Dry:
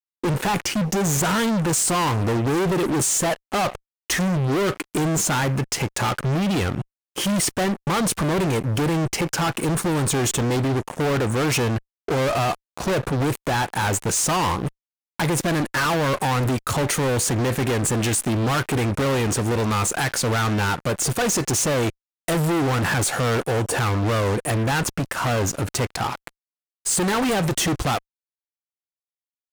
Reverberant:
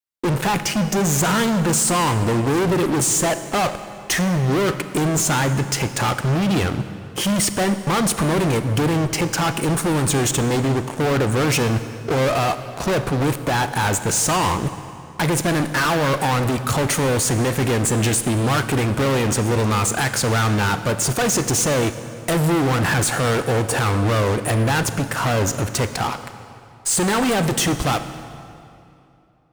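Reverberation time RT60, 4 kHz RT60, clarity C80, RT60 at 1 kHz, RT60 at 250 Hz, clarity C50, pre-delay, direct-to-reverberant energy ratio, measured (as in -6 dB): 2.8 s, 2.1 s, 12.0 dB, 2.7 s, 3.0 s, 11.0 dB, 29 ms, 10.5 dB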